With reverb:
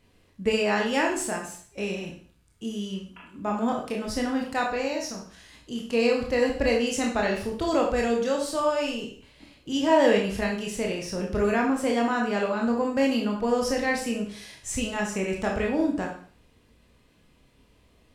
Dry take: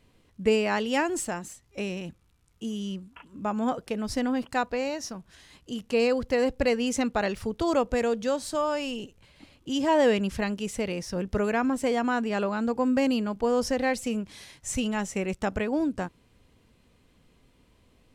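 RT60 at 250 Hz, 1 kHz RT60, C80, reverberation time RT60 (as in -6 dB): 0.50 s, 0.50 s, 10.0 dB, 0.50 s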